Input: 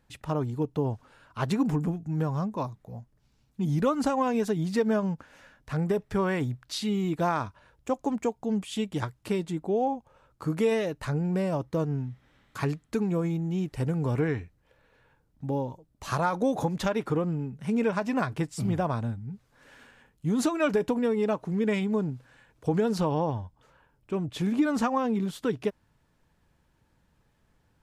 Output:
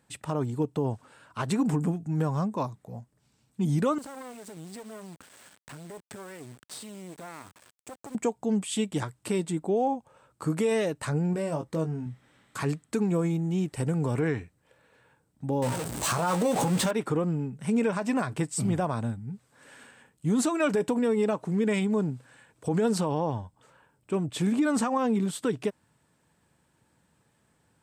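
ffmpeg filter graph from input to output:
-filter_complex "[0:a]asettb=1/sr,asplit=3[a][b][c];[a]atrim=end=3.984[d];[b]atrim=start=3.98:end=8.15,asetpts=PTS-STARTPTS,afade=t=in:d=0.004:c=qsin,afade=t=out:st=4.166:d=0.004:c=qsin,acompressor=threshold=-39dB:ratio=4:attack=3.2:release=140:knee=1:detection=peak,aeval=exprs='max(val(0),0)':c=same,acrusher=bits=6:dc=4:mix=0:aa=0.000001[e];[c]atrim=start=8.146[f];[d][e]acrossfade=d=0.004:c1=hsin:c2=qsin[g];[g][f]acrossfade=d=0.004:c1=qsin:c2=hsin,asettb=1/sr,asplit=3[h][i][j];[h]atrim=end=11.334[k];[i]atrim=start=11.33:end=12.06,asetpts=PTS-STARTPTS,afade=t=in:d=0.004:c=qsin,afade=t=out:st=0.726:d=0.004:c=qsin,acompressor=threshold=-35dB:ratio=1.5:attack=3.2:release=140:knee=1:detection=peak,asplit=2[l][m];[m]adelay=19,volume=-6.5dB[n];[l][n]amix=inputs=2:normalize=0,atrim=end_sample=32193[o];[j]atrim=start=12.056[p];[k][o]acrossfade=d=0.004:c1=hsin:c2=qsin[q];[q][p]acrossfade=d=0.004:c1=qsin:c2=hsin,asettb=1/sr,asplit=3[r][s][t];[r]atrim=end=15.624[u];[s]atrim=start=15.62:end=16.91,asetpts=PTS-STARTPTS,afade=t=in:d=0.004:c=qsin,afade=t=out:st=1.286:d=0.004:c=qsin,aeval=exprs='val(0)+0.5*0.0335*sgn(val(0))':c=same,asplit=2[v][w];[w]adelay=17,volume=-7.5dB[x];[v][x]amix=inputs=2:normalize=0,atrim=end_sample=56889[y];[t]atrim=start=16.906[z];[u][y]acrossfade=d=0.004:c1=hsin:c2=qsin[aa];[aa][z]acrossfade=d=0.004:c1=qsin:c2=hsin,highpass=110,equalizer=f=8.2k:w=4.7:g=13.5,alimiter=limit=-19.5dB:level=0:latency=1:release=55,volume=2dB"

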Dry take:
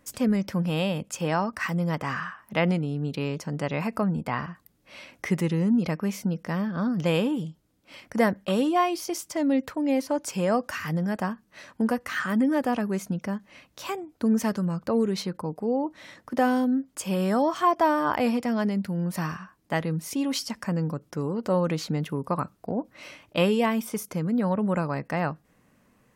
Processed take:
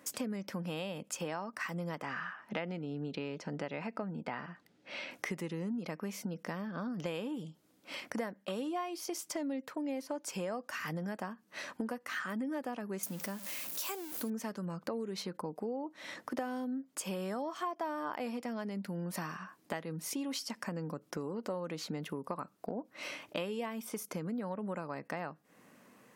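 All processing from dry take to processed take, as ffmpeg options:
-filter_complex "[0:a]asettb=1/sr,asplit=3[a][b][c];[a]atrim=end=2.054[d];[b]atrim=start=2.05:end=5.11,asetpts=PTS-STARTPTS,afade=t=in:d=0.004:c=qsin,afade=t=out:st=3.056:d=0.004:c=qsin,lowpass=4.6k,bandreject=f=1.1k:w=7.4[e];[c]atrim=start=5.106[f];[d][e]acrossfade=d=0.004:c1=hsin:c2=qsin[g];[g][f]acrossfade=d=0.004:c1=qsin:c2=hsin,asettb=1/sr,asplit=3[h][i][j];[h]atrim=end=13.034[k];[i]atrim=start=13.03:end=14.3,asetpts=PTS-STARTPTS,afade=t=in:d=0.004:c=qsin,afade=t=out:st=1.266:d=0.004:c=qsin,aeval=exprs='val(0)+0.5*0.0119*sgn(val(0))':c=same,aemphasis=mode=production:type=75fm[l];[j]atrim=start=14.296[m];[k][l]acrossfade=d=0.004:c1=hsin:c2=qsin[n];[n][m]acrossfade=d=0.004:c1=qsin:c2=hsin,highpass=220,acompressor=threshold=-41dB:ratio=5,volume=4dB"

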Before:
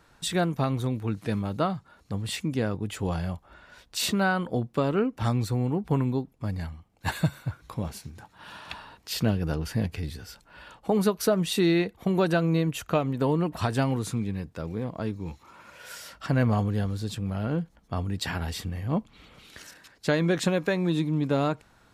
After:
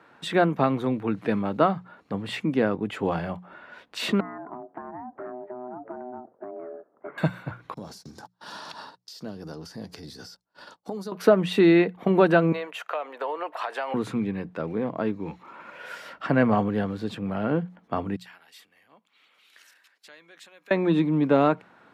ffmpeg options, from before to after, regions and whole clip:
-filter_complex "[0:a]asettb=1/sr,asplit=3[a][b][c];[a]atrim=end=4.204[d];[b]atrim=start=4.2:end=7.18,asetpts=PTS-STARTPTS,afade=t=in:d=0.004:c=qsin,afade=t=out:st=2.976:d=0.004:c=qsin,lowpass=f=1.2k:w=0.5412,lowpass=f=1.2k:w=1.3066,aeval=exprs='val(0)*sin(2*PI*500*n/s)':c=same,acompressor=threshold=-39dB:ratio=12:attack=3.2:release=140:knee=1:detection=peak[e];[c]atrim=start=7.176[f];[d][e]acrossfade=d=0.004:c1=hsin:c2=qsin[g];[g][f]acrossfade=d=0.004:c1=qsin:c2=hsin,asettb=1/sr,asplit=3[h][i][j];[h]atrim=end=7.744[k];[i]atrim=start=7.74:end=11.12,asetpts=PTS-STARTPTS,afade=t=in:d=0.004:c=qsin,afade=t=out:st=3.376:d=0.004:c=qsin,agate=range=-32dB:threshold=-48dB:ratio=16:release=100:detection=peak,highshelf=f=3.6k:t=q:w=3:g=13,acompressor=threshold=-34dB:ratio=12:attack=3.2:release=140:knee=1:detection=peak[l];[j]atrim=start=11.116[m];[k][l]acrossfade=d=0.004:c1=hsin:c2=qsin[n];[n][m]acrossfade=d=0.004:c1=qsin:c2=hsin,asettb=1/sr,asplit=3[o][p][q];[o]atrim=end=12.524[r];[p]atrim=start=12.52:end=13.94,asetpts=PTS-STARTPTS,afade=t=in:d=0.004:c=qsin,afade=t=out:st=1.416:d=0.004:c=qsin,highpass=f=550:w=0.5412,highpass=f=550:w=1.3066,acompressor=threshold=-31dB:ratio=6:attack=3.2:release=140:knee=1:detection=peak[s];[q]atrim=start=13.936[t];[r][s]acrossfade=d=0.004:c1=hsin:c2=qsin[u];[u][t]acrossfade=d=0.004:c1=qsin:c2=hsin,asettb=1/sr,asplit=3[v][w][x];[v]atrim=end=18.164[y];[w]atrim=start=18.16:end=20.71,asetpts=PTS-STARTPTS,afade=t=in:d=0.004:c=qsin,afade=t=out:st=2.546:d=0.004:c=qsin,acompressor=threshold=-38dB:ratio=2.5:attack=3.2:release=140:knee=1:detection=peak,aderivative[z];[x]atrim=start=20.706[aa];[y][z]acrossfade=d=0.004:c1=hsin:c2=qsin[ab];[ab][aa]acrossfade=d=0.004:c1=qsin:c2=hsin,highpass=78,acrossover=split=170 3000:gain=0.126 1 0.112[ac][ad][ae];[ac][ad][ae]amix=inputs=3:normalize=0,bandreject=f=60:t=h:w=6,bandreject=f=120:t=h:w=6,bandreject=f=180:t=h:w=6,volume=6.5dB"

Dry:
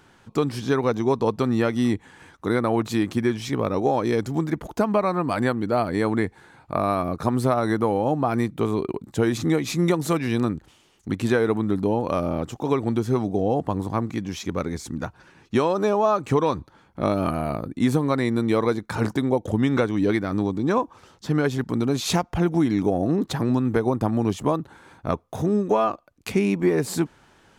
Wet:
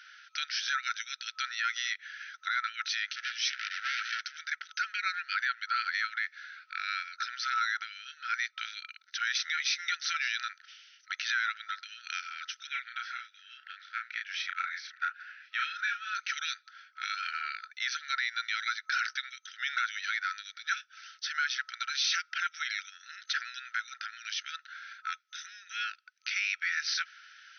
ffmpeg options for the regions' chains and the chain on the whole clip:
-filter_complex "[0:a]asettb=1/sr,asplit=3[a][b][c];[a]atrim=end=3.094[d];[b]atrim=start=3.09:end=4.37,asetpts=PTS-STARTPTS,afade=t=in:d=0.004:c=qsin,afade=t=out:st=1.276:d=0.004:c=qsin,lowshelf=f=170:g=4,asoftclip=type=hard:threshold=-26dB[e];[c]atrim=start=4.366[f];[d][e]acrossfade=d=0.004:c1=hsin:c2=qsin[g];[g][f]acrossfade=d=0.004:c1=qsin:c2=hsin,asettb=1/sr,asplit=3[h][i][j];[h]atrim=end=12.674[k];[i]atrim=start=12.67:end=16.15,asetpts=PTS-STARTPTS,afade=t=in:d=0.004:c=qsin,afade=t=out:st=3.476:d=0.004:c=qsin,lowpass=2.6k,asplit=2[l][m];[m]adelay=33,volume=-4dB[n];[l][n]amix=inputs=2:normalize=0,atrim=end_sample=153468[o];[j]atrim=start=16.146[p];[k][o]acrossfade=d=0.004:c1=hsin:c2=qsin[q];[q][p]acrossfade=d=0.004:c1=qsin:c2=hsin,afftfilt=real='re*between(b*sr/4096,1300,6200)':imag='im*between(b*sr/4096,1300,6200)':win_size=4096:overlap=0.75,equalizer=f=2.7k:t=o:w=0.77:g=-2,alimiter=level_in=3.5dB:limit=-24dB:level=0:latency=1:release=26,volume=-3.5dB,volume=7.5dB"

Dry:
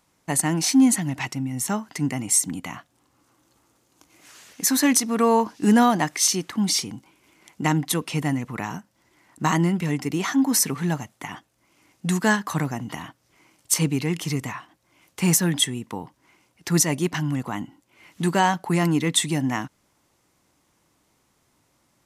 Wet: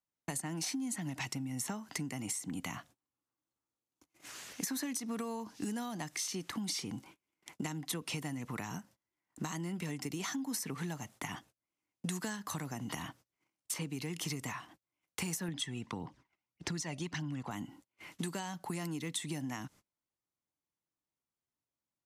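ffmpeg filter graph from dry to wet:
-filter_complex "[0:a]asettb=1/sr,asplit=3[a][b][c];[a]atrim=end=15.484[d];[b]atrim=start=15.48:end=17.51,asetpts=PTS-STARTPTS,afade=t=in:d=0.004:c=qsin,afade=t=out:st=2.026:d=0.004:c=qsin,lowpass=5.3k,aphaser=in_gain=1:out_gain=1:delay=1.6:decay=0.46:speed=1.7:type=triangular[e];[c]atrim=start=17.506[f];[d][e]acrossfade=d=0.004:c1=hsin:c2=qsin[g];[g][f]acrossfade=d=0.004:c1=qsin:c2=hsin,acompressor=threshold=-28dB:ratio=6,agate=range=-31dB:threshold=-53dB:ratio=16:detection=peak,acrossover=split=210|3500[h][i][j];[h]acompressor=threshold=-44dB:ratio=4[k];[i]acompressor=threshold=-41dB:ratio=4[l];[j]acompressor=threshold=-38dB:ratio=4[m];[k][l][m]amix=inputs=3:normalize=0"

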